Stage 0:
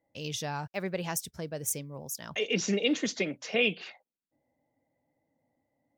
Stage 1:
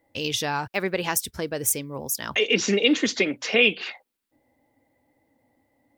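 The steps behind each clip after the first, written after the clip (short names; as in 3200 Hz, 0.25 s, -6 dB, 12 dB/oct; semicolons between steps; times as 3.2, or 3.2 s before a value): fifteen-band EQ 160 Hz -11 dB, 630 Hz -6 dB, 6300 Hz -5 dB; in parallel at -0.5 dB: compressor, threshold -38 dBFS, peak gain reduction 14 dB; on the sum: gain +7.5 dB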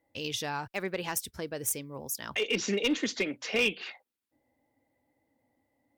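one-sided clip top -14.5 dBFS; gain -7.5 dB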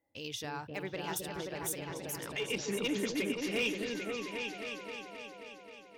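painted sound fall, 3.81–4.96, 430–1900 Hz -45 dBFS; repeats that get brighter 0.265 s, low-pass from 400 Hz, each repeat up 2 oct, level 0 dB; gain -6.5 dB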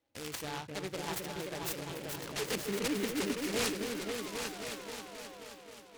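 noise-modulated delay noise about 2000 Hz, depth 0.11 ms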